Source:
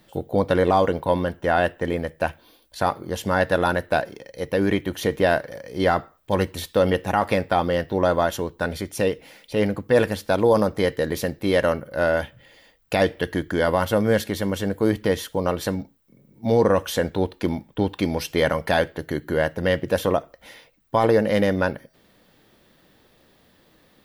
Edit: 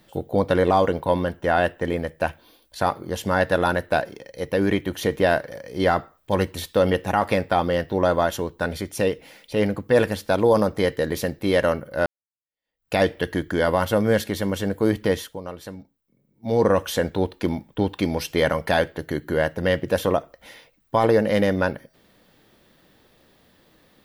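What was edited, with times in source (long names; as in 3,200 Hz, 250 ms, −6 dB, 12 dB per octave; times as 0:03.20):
0:12.06–0:12.95: fade in exponential
0:15.14–0:16.64: duck −11.5 dB, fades 0.26 s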